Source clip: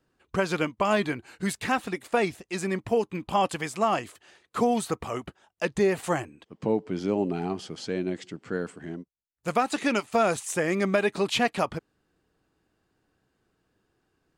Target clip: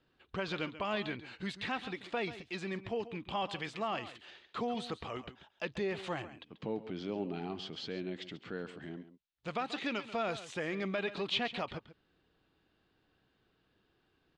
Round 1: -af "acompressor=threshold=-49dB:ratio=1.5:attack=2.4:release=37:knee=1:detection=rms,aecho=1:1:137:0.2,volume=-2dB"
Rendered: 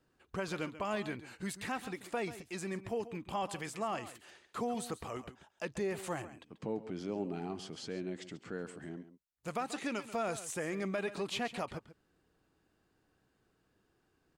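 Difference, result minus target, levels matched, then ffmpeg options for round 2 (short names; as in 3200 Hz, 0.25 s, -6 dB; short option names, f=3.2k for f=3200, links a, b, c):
4000 Hz band -5.0 dB
-af "acompressor=threshold=-49dB:ratio=1.5:attack=2.4:release=37:knee=1:detection=rms,lowpass=f=3.6k:t=q:w=2.4,aecho=1:1:137:0.2,volume=-2dB"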